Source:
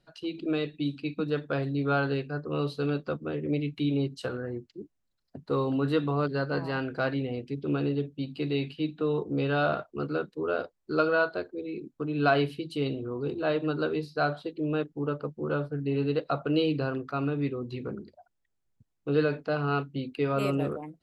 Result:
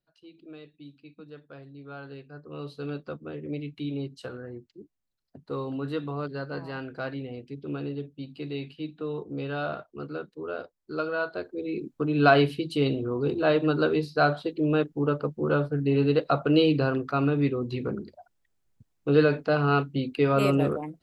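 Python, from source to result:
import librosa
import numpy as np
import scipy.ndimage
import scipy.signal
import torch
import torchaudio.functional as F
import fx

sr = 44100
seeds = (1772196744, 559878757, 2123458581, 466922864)

y = fx.gain(x, sr, db=fx.line((1.86, -16.5), (2.92, -5.0), (11.14, -5.0), (11.73, 5.0)))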